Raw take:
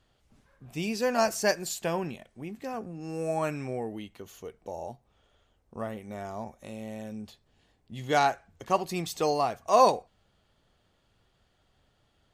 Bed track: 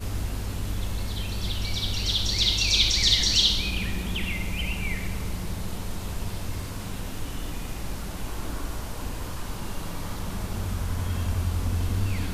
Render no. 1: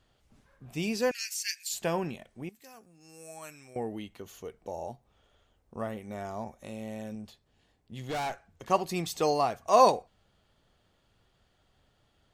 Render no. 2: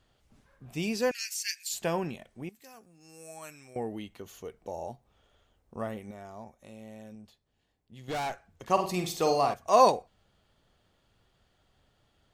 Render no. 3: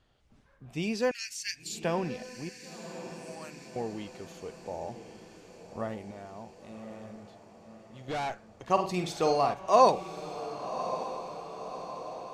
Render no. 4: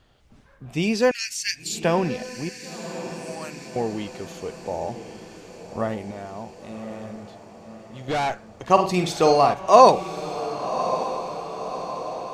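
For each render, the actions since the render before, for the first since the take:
1.11–1.73 steep high-pass 2000 Hz 48 dB/oct; 2.49–3.76 pre-emphasis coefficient 0.9; 7.15–8.64 tube stage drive 30 dB, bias 0.5
6.11–8.08 gain -7.5 dB; 8.72–9.54 flutter echo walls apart 8.5 m, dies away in 0.41 s
air absorption 52 m; diffused feedback echo 1.109 s, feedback 59%, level -11 dB
gain +9 dB; limiter -1 dBFS, peak gain reduction 1 dB

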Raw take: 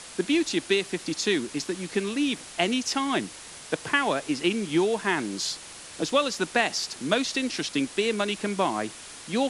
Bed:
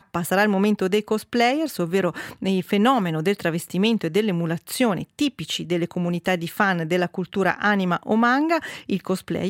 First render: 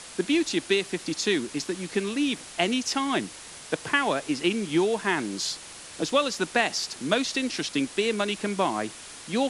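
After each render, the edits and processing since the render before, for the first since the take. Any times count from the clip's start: nothing audible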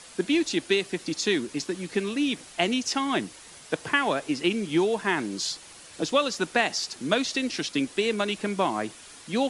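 denoiser 6 dB, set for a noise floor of -44 dBFS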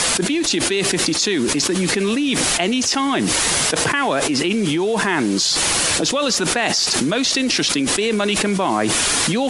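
fast leveller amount 100%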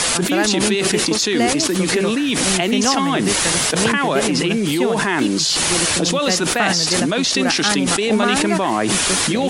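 add bed -1.5 dB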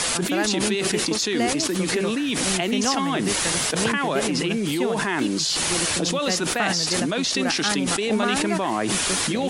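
gain -5.5 dB

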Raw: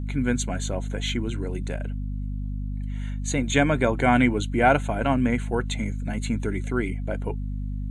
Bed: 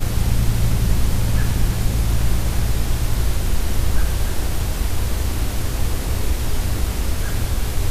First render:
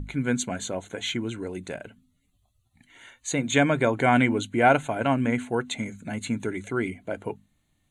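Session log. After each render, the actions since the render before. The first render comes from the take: notches 50/100/150/200/250 Hz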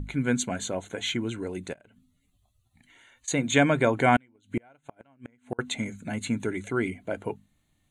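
1.73–3.28 compressor, threshold -53 dBFS; 4.16–5.59 flipped gate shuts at -16 dBFS, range -38 dB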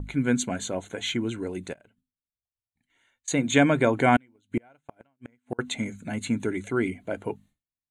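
dynamic EQ 290 Hz, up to +3 dB, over -34 dBFS, Q 1.4; expander -48 dBFS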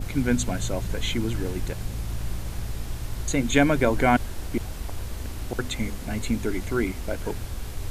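add bed -12 dB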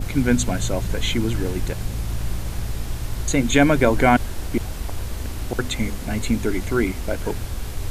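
gain +4.5 dB; limiter -3 dBFS, peak gain reduction 2.5 dB

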